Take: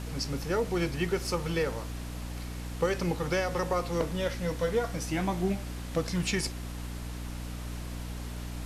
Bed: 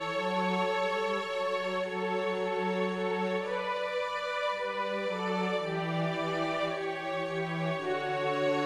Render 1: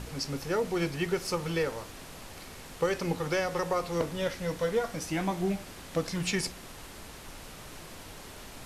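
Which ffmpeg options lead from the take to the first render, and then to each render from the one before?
-af "bandreject=f=60:t=h:w=4,bandreject=f=120:t=h:w=4,bandreject=f=180:t=h:w=4,bandreject=f=240:t=h:w=4,bandreject=f=300:t=h:w=4"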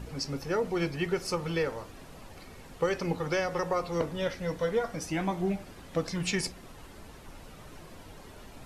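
-af "afftdn=nr=9:nf=-47"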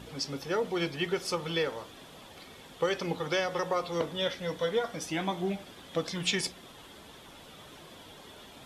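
-af "highpass=f=210:p=1,equalizer=f=3.4k:w=4.9:g=12"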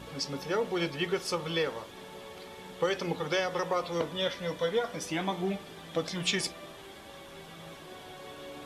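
-filter_complex "[1:a]volume=-17dB[a];[0:a][a]amix=inputs=2:normalize=0"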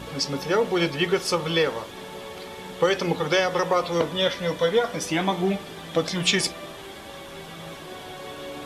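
-af "volume=8dB"

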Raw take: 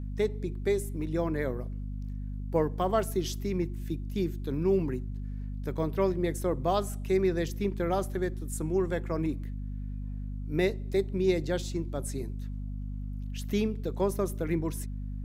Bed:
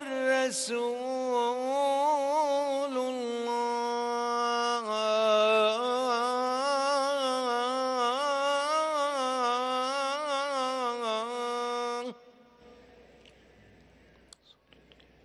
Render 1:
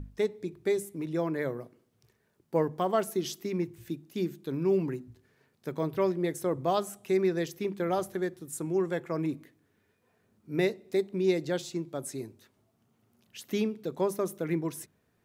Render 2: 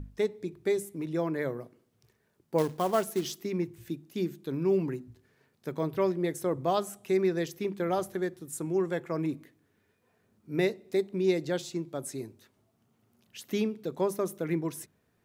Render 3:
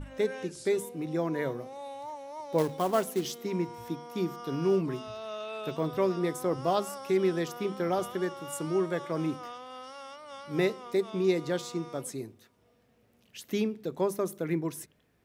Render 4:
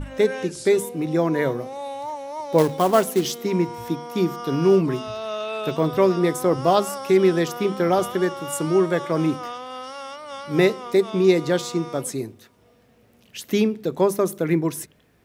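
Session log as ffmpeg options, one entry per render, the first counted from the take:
-af "bandreject=f=50:t=h:w=6,bandreject=f=100:t=h:w=6,bandreject=f=150:t=h:w=6,bandreject=f=200:t=h:w=6,bandreject=f=250:t=h:w=6"
-filter_complex "[0:a]asettb=1/sr,asplit=3[a][b][c];[a]atrim=end=2.584[d];[b]atrim=start=2.58:end=3.38,asetpts=PTS-STARTPTS,afade=t=in:d=0.004:c=qsin,afade=t=out:st=0.796:d=0.004:c=qsin,acrusher=bits=4:mode=log:mix=0:aa=0.000001[e];[c]atrim=start=3.376[f];[d][e]acrossfade=d=0.004:c1=hsin:c2=qsin[g];[g][f]acrossfade=d=0.004:c1=qsin:c2=hsin"
-filter_complex "[1:a]volume=-14.5dB[a];[0:a][a]amix=inputs=2:normalize=0"
-af "volume=9.5dB"

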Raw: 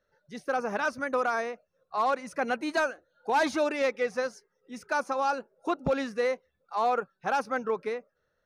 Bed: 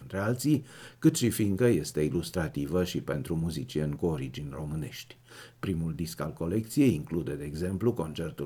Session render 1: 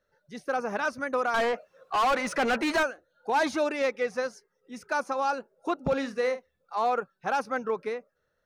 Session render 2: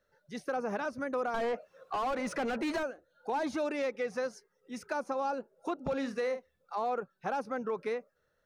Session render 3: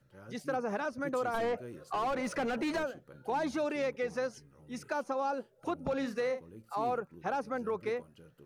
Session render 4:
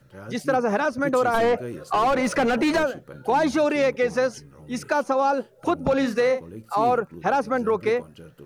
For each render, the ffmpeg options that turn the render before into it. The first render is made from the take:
-filter_complex "[0:a]asettb=1/sr,asplit=3[a][b][c];[a]atrim=end=1.344[d];[b]atrim=start=1.34:end=2.83,asetpts=PTS-STARTPTS,afade=t=in:d=0.004:c=qsin,afade=t=out:st=1.486:d=0.004:c=qsin,asplit=2[e][f];[f]highpass=f=720:p=1,volume=26dB,asoftclip=type=tanh:threshold=-18.5dB[g];[e][g]amix=inputs=2:normalize=0,lowpass=f=2.8k:p=1,volume=-6dB[h];[c]atrim=start=2.826[i];[d][h]acrossfade=d=0.004:c1=hsin:c2=qsin[j];[j][i]acrossfade=d=0.004:c1=qsin:c2=hsin,asettb=1/sr,asplit=3[k][l][m];[k]atrim=end=5.834[n];[l]atrim=start=5.83:end=6.79,asetpts=PTS-STARTPTS,afade=t=in:d=0.004:c=qsin,afade=t=out:st=0.956:d=0.004:c=qsin,asplit=2[o][p];[p]adelay=48,volume=-11.5dB[q];[o][q]amix=inputs=2:normalize=0,atrim=end_sample=42336[r];[m]atrim=start=6.786[s];[n][r]acrossfade=d=0.004:c1=hsin:c2=qsin[t];[t][s]acrossfade=d=0.004:c1=qsin:c2=hsin"
-filter_complex "[0:a]acrossover=split=700[a][b];[a]alimiter=level_in=4.5dB:limit=-24dB:level=0:latency=1,volume=-4.5dB[c];[b]acompressor=threshold=-39dB:ratio=5[d];[c][d]amix=inputs=2:normalize=0"
-filter_complex "[1:a]volume=-22dB[a];[0:a][a]amix=inputs=2:normalize=0"
-af "volume=12dB"

